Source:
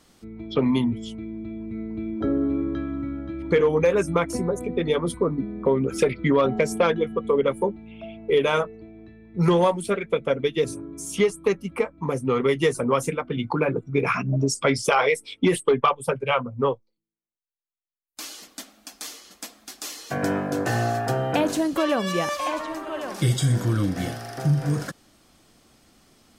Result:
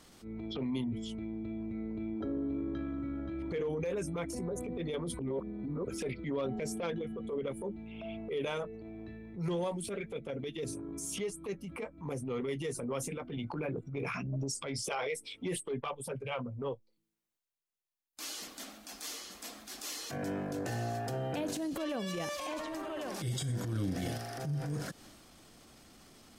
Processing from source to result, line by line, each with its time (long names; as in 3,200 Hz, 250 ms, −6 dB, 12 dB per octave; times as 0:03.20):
0:05.19–0:05.87: reverse
0:14.38–0:14.84: downward compressor, threshold −21 dBFS
0:23.73–0:24.18: clip gain +6 dB
whole clip: dynamic equaliser 1,200 Hz, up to −7 dB, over −39 dBFS, Q 1.2; downward compressor 2.5 to 1, threshold −38 dBFS; transient designer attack −9 dB, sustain +5 dB